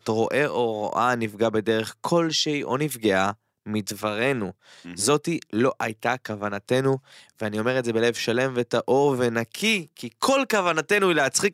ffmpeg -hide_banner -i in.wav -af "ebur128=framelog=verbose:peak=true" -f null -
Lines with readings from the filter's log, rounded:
Integrated loudness:
  I:         -23.8 LUFS
  Threshold: -34.0 LUFS
Loudness range:
  LRA:         3.1 LU
  Threshold: -44.5 LUFS
  LRA low:   -25.9 LUFS
  LRA high:  -22.8 LUFS
True peak:
  Peak:       -7.9 dBFS